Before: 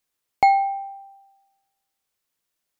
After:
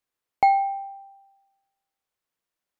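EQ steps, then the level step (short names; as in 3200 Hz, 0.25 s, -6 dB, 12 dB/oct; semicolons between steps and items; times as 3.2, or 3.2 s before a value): low shelf 450 Hz -4.5 dB; high shelf 2500 Hz -10 dB; 0.0 dB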